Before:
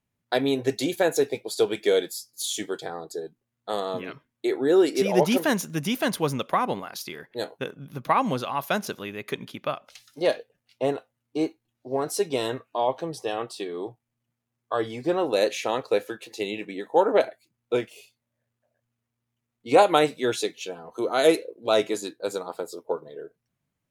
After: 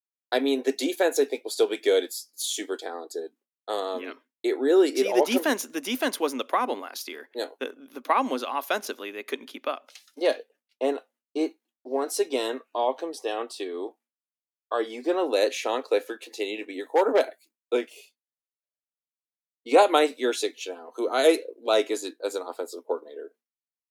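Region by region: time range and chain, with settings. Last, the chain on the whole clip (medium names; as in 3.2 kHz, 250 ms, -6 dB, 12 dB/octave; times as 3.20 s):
16.73–17.75 s: treble shelf 8.1 kHz +8.5 dB + hard clipper -13 dBFS
whole clip: Chebyshev high-pass 250 Hz, order 5; expander -52 dBFS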